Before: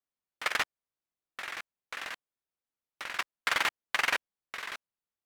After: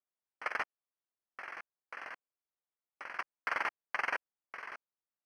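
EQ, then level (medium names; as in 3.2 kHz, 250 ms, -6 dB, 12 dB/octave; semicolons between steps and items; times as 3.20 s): boxcar filter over 12 samples; bass shelf 230 Hz -12 dB; -1.5 dB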